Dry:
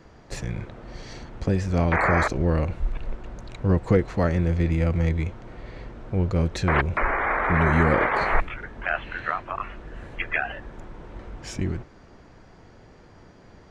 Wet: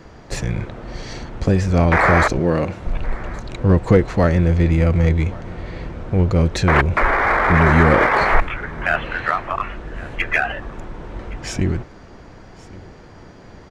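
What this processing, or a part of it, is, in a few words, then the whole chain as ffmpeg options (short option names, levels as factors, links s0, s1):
parallel distortion: -filter_complex "[0:a]asettb=1/sr,asplit=3[s0][s1][s2];[s0]atrim=end=2.394[s3];[s1]atrim=start=2.39:end=2.87,asetpts=PTS-STARTPTS,afade=t=in:d=0.004:c=qsin,afade=t=out:st=0.476:d=0.004:c=qsin,highpass=160[s4];[s2]atrim=start=2.866[s5];[s3][s4]acrossfade=d=0.004:c1=hsin:c2=qsin[s6];[s6][s5]acrossfade=d=0.004:c1=qsin:c2=hsin,asplit=2[s7][s8];[s8]asoftclip=type=hard:threshold=0.0562,volume=0.355[s9];[s7][s9]amix=inputs=2:normalize=0,aecho=1:1:1118:0.0891,volume=1.88"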